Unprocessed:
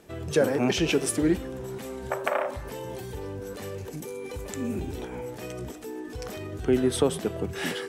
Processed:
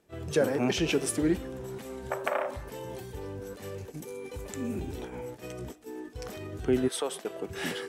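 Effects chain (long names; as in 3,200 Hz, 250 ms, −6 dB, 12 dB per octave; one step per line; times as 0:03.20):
0:06.87–0:07.49: high-pass filter 790 Hz → 280 Hz 12 dB per octave
noise gate −37 dBFS, range −11 dB
level −3 dB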